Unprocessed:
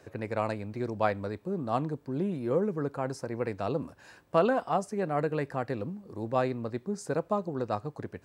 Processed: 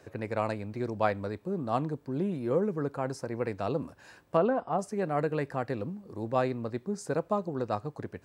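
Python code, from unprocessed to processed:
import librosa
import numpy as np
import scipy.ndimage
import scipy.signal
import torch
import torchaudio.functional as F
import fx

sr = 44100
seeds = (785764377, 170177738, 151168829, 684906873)

y = fx.lowpass(x, sr, hz=1000.0, slope=6, at=(4.37, 4.79))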